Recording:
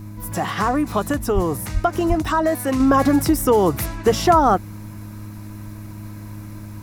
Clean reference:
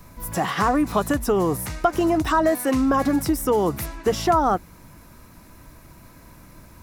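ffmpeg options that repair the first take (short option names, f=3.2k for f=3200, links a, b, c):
-filter_complex "[0:a]bandreject=f=104.5:t=h:w=4,bandreject=f=209:t=h:w=4,bandreject=f=313.5:t=h:w=4,asplit=3[a][b][c];[a]afade=t=out:st=1.34:d=0.02[d];[b]highpass=f=140:w=0.5412,highpass=f=140:w=1.3066,afade=t=in:st=1.34:d=0.02,afade=t=out:st=1.46:d=0.02[e];[c]afade=t=in:st=1.46:d=0.02[f];[d][e][f]amix=inputs=3:normalize=0,asplit=3[g][h][i];[g]afade=t=out:st=1.73:d=0.02[j];[h]highpass=f=140:w=0.5412,highpass=f=140:w=1.3066,afade=t=in:st=1.73:d=0.02,afade=t=out:st=1.85:d=0.02[k];[i]afade=t=in:st=1.85:d=0.02[l];[j][k][l]amix=inputs=3:normalize=0,asplit=3[m][n][o];[m]afade=t=out:st=2.08:d=0.02[p];[n]highpass=f=140:w=0.5412,highpass=f=140:w=1.3066,afade=t=in:st=2.08:d=0.02,afade=t=out:st=2.2:d=0.02[q];[o]afade=t=in:st=2.2:d=0.02[r];[p][q][r]amix=inputs=3:normalize=0,asetnsamples=n=441:p=0,asendcmd='2.8 volume volume -4.5dB',volume=0dB"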